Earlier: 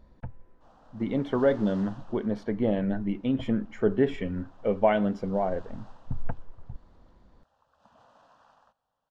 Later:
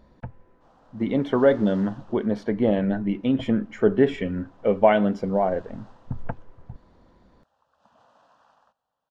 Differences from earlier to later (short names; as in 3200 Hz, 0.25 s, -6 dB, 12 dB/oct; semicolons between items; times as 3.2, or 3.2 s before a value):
speech +5.5 dB; master: add low shelf 72 Hz -11 dB